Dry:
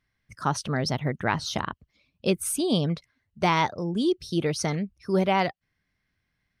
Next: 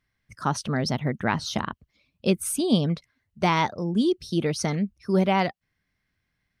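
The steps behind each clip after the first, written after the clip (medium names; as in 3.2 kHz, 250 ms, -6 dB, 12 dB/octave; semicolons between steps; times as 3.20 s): dynamic bell 220 Hz, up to +6 dB, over -42 dBFS, Q 2.9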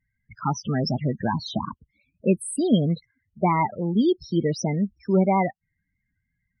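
loudest bins only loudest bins 16; trim +2 dB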